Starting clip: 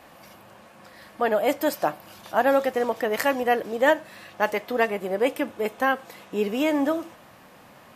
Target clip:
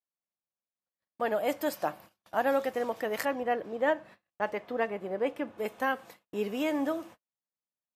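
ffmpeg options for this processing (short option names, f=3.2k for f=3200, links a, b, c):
-filter_complex "[0:a]asettb=1/sr,asplit=3[a][b][c];[a]atrim=end=3.254[d];[b]atrim=start=3.25:end=5.58,asetpts=PTS-STARTPTS,afade=t=in:d=0.004:c=qsin,afade=t=out:st=2.326:d=0.004:c=qsin,lowpass=f=2k:p=1[e];[c]atrim=start=5.576[f];[d][e]acrossfade=d=0.004:c1=hsin:c2=qsin[g];[g][f]acrossfade=d=0.004:c1=qsin:c2=hsin,agate=range=-49dB:threshold=-41dB:ratio=16:detection=peak,volume=-7dB"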